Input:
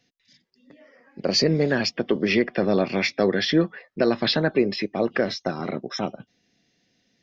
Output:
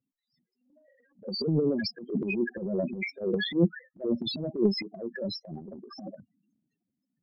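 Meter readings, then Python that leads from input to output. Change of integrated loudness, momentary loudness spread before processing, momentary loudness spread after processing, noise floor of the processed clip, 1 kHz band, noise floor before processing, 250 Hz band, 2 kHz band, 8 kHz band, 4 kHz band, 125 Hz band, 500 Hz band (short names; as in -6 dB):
-6.5 dB, 9 LU, 16 LU, under -85 dBFS, -19.0 dB, -70 dBFS, -5.5 dB, -10.0 dB, n/a, -9.5 dB, -4.5 dB, -8.0 dB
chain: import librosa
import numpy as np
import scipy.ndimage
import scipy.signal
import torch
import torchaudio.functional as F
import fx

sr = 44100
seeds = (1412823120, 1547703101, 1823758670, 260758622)

y = fx.spec_topn(x, sr, count=4)
y = fx.transient(y, sr, attack_db=-10, sustain_db=10)
y = fx.upward_expand(y, sr, threshold_db=-37.0, expansion=1.5)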